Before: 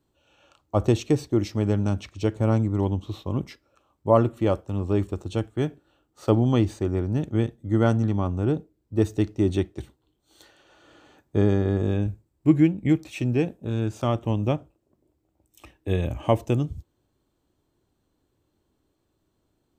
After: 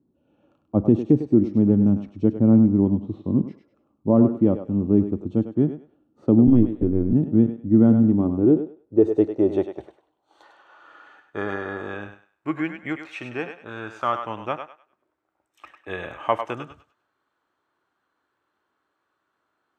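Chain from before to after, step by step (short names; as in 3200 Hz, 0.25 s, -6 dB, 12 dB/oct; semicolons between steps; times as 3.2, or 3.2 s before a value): band-pass sweep 230 Hz -> 1400 Hz, 7.94–11.08; 6.47–7.13 LPC vocoder at 8 kHz pitch kept; on a send: thinning echo 0.1 s, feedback 28%, high-pass 570 Hz, level -7 dB; on the sum: maximiser +16.5 dB; gain -5 dB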